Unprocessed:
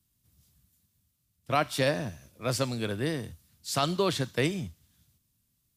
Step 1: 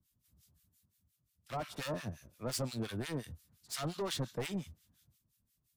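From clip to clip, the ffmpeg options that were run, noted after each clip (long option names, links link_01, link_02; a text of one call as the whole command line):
ffmpeg -i in.wav -filter_complex "[0:a]volume=31dB,asoftclip=hard,volume=-31dB,acrossover=split=1200[link_01][link_02];[link_01]aeval=exprs='val(0)*(1-1/2+1/2*cos(2*PI*5.7*n/s))':channel_layout=same[link_03];[link_02]aeval=exprs='val(0)*(1-1/2-1/2*cos(2*PI*5.7*n/s))':channel_layout=same[link_04];[link_03][link_04]amix=inputs=2:normalize=0" out.wav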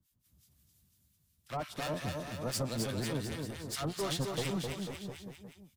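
ffmpeg -i in.wav -af "aecho=1:1:260|494|704.6|894.1|1065:0.631|0.398|0.251|0.158|0.1,volume=1.5dB" out.wav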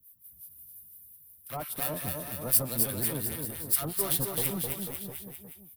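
ffmpeg -i in.wav -af "aexciter=amount=13.2:drive=6.5:freq=9700" out.wav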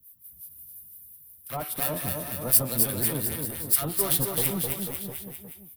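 ffmpeg -i in.wav -af "bandreject=frequency=106.9:width_type=h:width=4,bandreject=frequency=213.8:width_type=h:width=4,bandreject=frequency=320.7:width_type=h:width=4,bandreject=frequency=427.6:width_type=h:width=4,bandreject=frequency=534.5:width_type=h:width=4,bandreject=frequency=641.4:width_type=h:width=4,bandreject=frequency=748.3:width_type=h:width=4,bandreject=frequency=855.2:width_type=h:width=4,bandreject=frequency=962.1:width_type=h:width=4,bandreject=frequency=1069:width_type=h:width=4,bandreject=frequency=1175.9:width_type=h:width=4,bandreject=frequency=1282.8:width_type=h:width=4,bandreject=frequency=1389.7:width_type=h:width=4,bandreject=frequency=1496.6:width_type=h:width=4,bandreject=frequency=1603.5:width_type=h:width=4,bandreject=frequency=1710.4:width_type=h:width=4,bandreject=frequency=1817.3:width_type=h:width=4,bandreject=frequency=1924.2:width_type=h:width=4,bandreject=frequency=2031.1:width_type=h:width=4,bandreject=frequency=2138:width_type=h:width=4,bandreject=frequency=2244.9:width_type=h:width=4,bandreject=frequency=2351.8:width_type=h:width=4,bandreject=frequency=2458.7:width_type=h:width=4,bandreject=frequency=2565.6:width_type=h:width=4,bandreject=frequency=2672.5:width_type=h:width=4,bandreject=frequency=2779.4:width_type=h:width=4,bandreject=frequency=2886.3:width_type=h:width=4,bandreject=frequency=2993.2:width_type=h:width=4,bandreject=frequency=3100.1:width_type=h:width=4,bandreject=frequency=3207:width_type=h:width=4,bandreject=frequency=3313.9:width_type=h:width=4,bandreject=frequency=3420.8:width_type=h:width=4,bandreject=frequency=3527.7:width_type=h:width=4,bandreject=frequency=3634.6:width_type=h:width=4,bandreject=frequency=3741.5:width_type=h:width=4,bandreject=frequency=3848.4:width_type=h:width=4,bandreject=frequency=3955.3:width_type=h:width=4,volume=4dB" out.wav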